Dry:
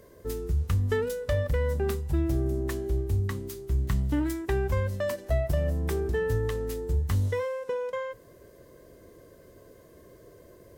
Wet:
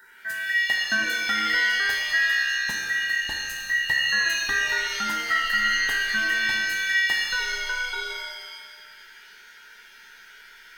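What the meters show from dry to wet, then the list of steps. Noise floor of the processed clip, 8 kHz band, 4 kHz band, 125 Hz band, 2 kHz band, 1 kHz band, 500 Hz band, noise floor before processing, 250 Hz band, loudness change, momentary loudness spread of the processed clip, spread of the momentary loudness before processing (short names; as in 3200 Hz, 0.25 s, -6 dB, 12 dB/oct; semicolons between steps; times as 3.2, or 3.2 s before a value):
-49 dBFS, +13.0 dB, +22.5 dB, under -25 dB, +21.5 dB, +8.0 dB, -15.5 dB, -54 dBFS, -10.0 dB, +6.5 dB, 9 LU, 6 LU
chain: band inversion scrambler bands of 2000 Hz; shimmer reverb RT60 1.3 s, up +7 st, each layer -2 dB, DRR 2.5 dB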